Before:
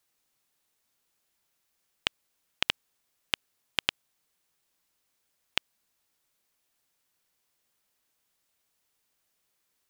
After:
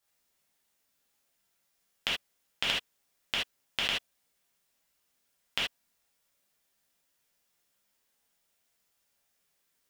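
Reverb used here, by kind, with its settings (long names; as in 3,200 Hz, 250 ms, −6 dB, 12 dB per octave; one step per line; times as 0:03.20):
reverb whose tail is shaped and stops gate 100 ms flat, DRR −6.5 dB
level −6.5 dB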